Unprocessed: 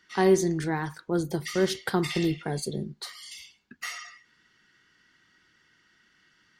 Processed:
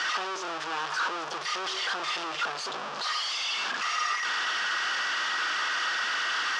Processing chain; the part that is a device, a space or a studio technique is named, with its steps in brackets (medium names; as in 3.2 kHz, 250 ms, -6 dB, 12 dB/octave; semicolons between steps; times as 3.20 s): home computer beeper (one-bit comparator; cabinet simulation 800–5100 Hz, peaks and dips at 1.2 kHz +6 dB, 2.1 kHz -7 dB, 4.1 kHz -5 dB); trim +4 dB